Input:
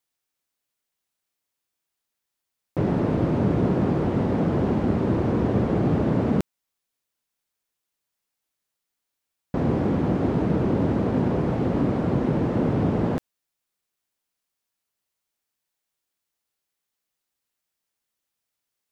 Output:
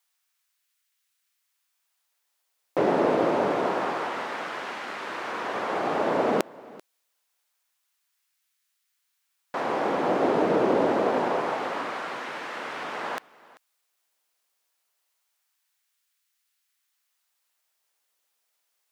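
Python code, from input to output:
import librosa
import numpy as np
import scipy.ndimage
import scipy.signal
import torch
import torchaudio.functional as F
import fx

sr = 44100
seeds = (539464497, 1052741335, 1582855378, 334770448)

y = fx.filter_lfo_highpass(x, sr, shape='sine', hz=0.26, low_hz=500.0, high_hz=1600.0, q=0.94)
y = y + 10.0 ** (-21.5 / 20.0) * np.pad(y, (int(389 * sr / 1000.0), 0))[:len(y)]
y = F.gain(torch.from_numpy(y), 7.0).numpy()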